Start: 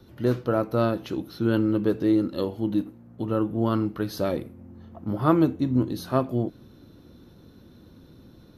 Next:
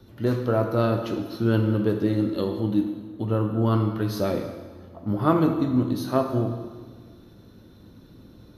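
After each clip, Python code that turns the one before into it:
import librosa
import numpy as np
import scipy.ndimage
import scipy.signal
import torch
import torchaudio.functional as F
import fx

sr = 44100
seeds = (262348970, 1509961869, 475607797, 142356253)

y = fx.rev_plate(x, sr, seeds[0], rt60_s=1.5, hf_ratio=0.9, predelay_ms=0, drr_db=4.0)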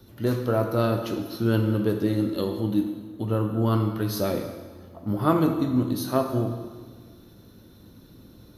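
y = fx.high_shelf(x, sr, hz=6700.0, db=11.5)
y = y * 10.0 ** (-1.0 / 20.0)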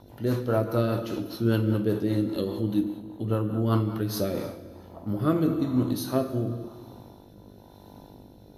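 y = fx.dmg_buzz(x, sr, base_hz=50.0, harmonics=20, level_db=-51.0, tilt_db=0, odd_only=False)
y = fx.rotary_switch(y, sr, hz=5.0, then_hz=1.0, switch_at_s=3.96)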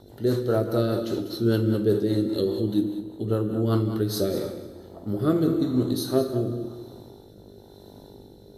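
y = fx.graphic_eq_31(x, sr, hz=(400, 1000, 2500, 4000, 8000), db=(9, -7, -8, 7, 9))
y = y + 10.0 ** (-12.5 / 20.0) * np.pad(y, (int(198 * sr / 1000.0), 0))[:len(y)]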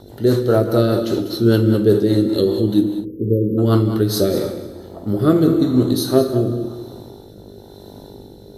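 y = fx.spec_erase(x, sr, start_s=3.05, length_s=0.53, low_hz=540.0, high_hz=12000.0)
y = y * 10.0 ** (8.0 / 20.0)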